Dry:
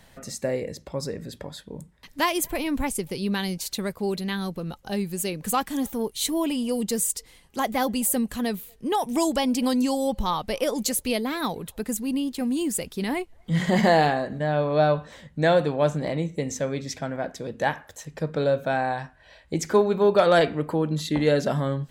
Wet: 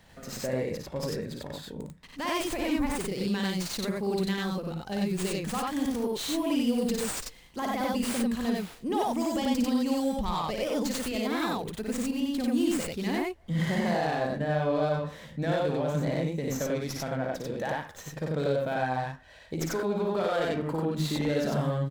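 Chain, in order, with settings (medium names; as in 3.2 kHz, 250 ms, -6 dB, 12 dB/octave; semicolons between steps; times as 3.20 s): peak limiter -19.5 dBFS, peak gain reduction 11 dB; on a send: loudspeakers at several distances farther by 19 m -4 dB, 32 m 0 dB; on the sum: sliding maximum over 3 samples; trim -4 dB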